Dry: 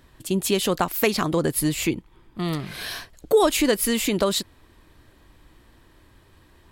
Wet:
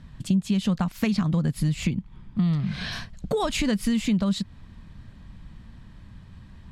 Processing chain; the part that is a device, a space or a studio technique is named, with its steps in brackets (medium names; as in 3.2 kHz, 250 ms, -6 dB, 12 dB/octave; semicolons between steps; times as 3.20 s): 2.42–2.91 s: low-pass 10 kHz -> 5.4 kHz 12 dB/octave; jukebox (low-pass 6.5 kHz 12 dB/octave; resonant low shelf 260 Hz +9.5 dB, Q 3; compression 4:1, threshold -22 dBFS, peak gain reduction 14 dB)